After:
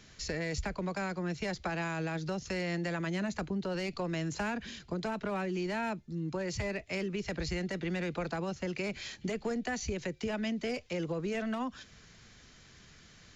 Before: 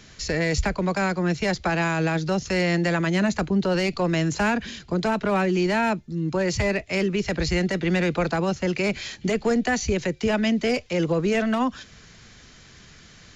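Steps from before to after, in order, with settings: compressor 3:1, threshold -24 dBFS, peak gain reduction 5.5 dB; gain -8 dB

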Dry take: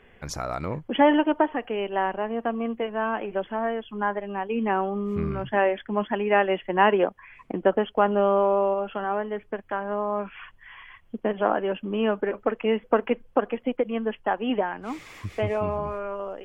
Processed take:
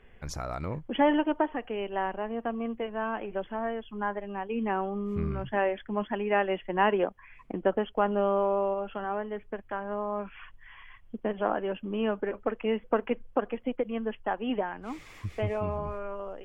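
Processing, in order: low shelf 80 Hz +11.5 dB; gain -5.5 dB

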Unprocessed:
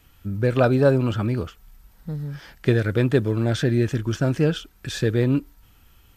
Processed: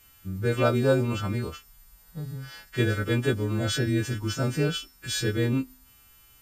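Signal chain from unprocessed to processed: frequency quantiser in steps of 2 st; de-hum 266.3 Hz, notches 27; speed mistake 25 fps video run at 24 fps; gain -4.5 dB

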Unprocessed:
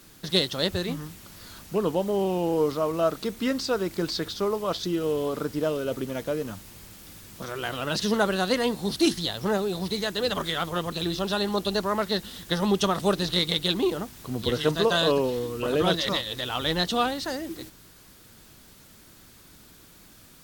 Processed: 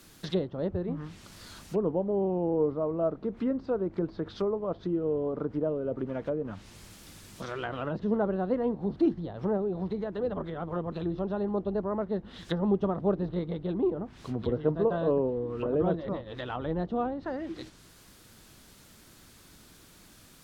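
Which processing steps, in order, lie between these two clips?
treble ducked by the level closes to 700 Hz, closed at -24.5 dBFS; gain -2 dB

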